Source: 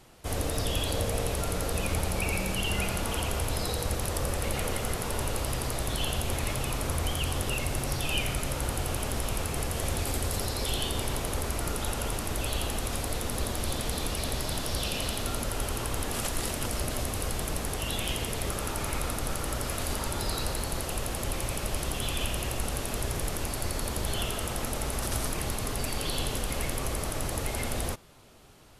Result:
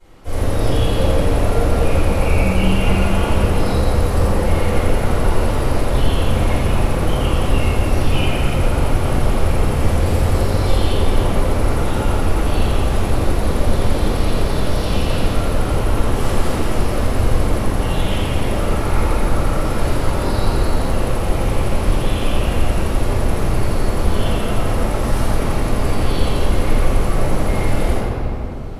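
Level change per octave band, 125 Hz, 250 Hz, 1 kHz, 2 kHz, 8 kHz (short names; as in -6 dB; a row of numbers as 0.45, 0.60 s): +15.0, +15.0, +12.0, +8.5, -0.5 dB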